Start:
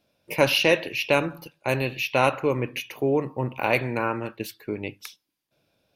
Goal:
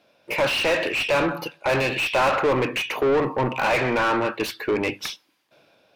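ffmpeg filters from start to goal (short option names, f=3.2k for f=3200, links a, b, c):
-filter_complex "[0:a]dynaudnorm=f=250:g=7:m=11.5dB,asplit=2[a][b];[b]highpass=f=720:p=1,volume=30dB,asoftclip=type=tanh:threshold=-3dB[c];[a][c]amix=inputs=2:normalize=0,lowpass=f=1.9k:p=1,volume=-6dB,volume=-9dB"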